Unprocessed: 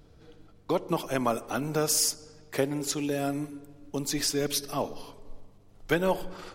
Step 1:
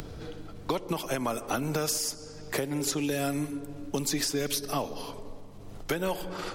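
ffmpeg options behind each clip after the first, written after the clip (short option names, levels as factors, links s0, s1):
-filter_complex "[0:a]acompressor=mode=upward:threshold=0.01:ratio=2.5,alimiter=limit=0.0944:level=0:latency=1:release=367,acrossover=split=97|1500|5000[s0][s1][s2][s3];[s0]acompressor=threshold=0.00398:ratio=4[s4];[s1]acompressor=threshold=0.0158:ratio=4[s5];[s2]acompressor=threshold=0.00562:ratio=4[s6];[s3]acompressor=threshold=0.0112:ratio=4[s7];[s4][s5][s6][s7]amix=inputs=4:normalize=0,volume=2.51"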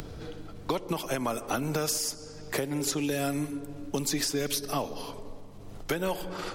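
-af anull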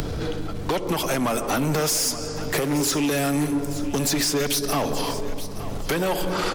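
-filter_complex "[0:a]asplit=2[s0][s1];[s1]alimiter=level_in=1.33:limit=0.0631:level=0:latency=1:release=133,volume=0.75,volume=1.33[s2];[s0][s2]amix=inputs=2:normalize=0,asoftclip=type=tanh:threshold=0.0531,aecho=1:1:875|1750|2625:0.2|0.0559|0.0156,volume=2.24"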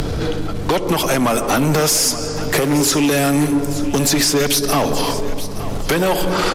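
-af "aresample=32000,aresample=44100,volume=2.24"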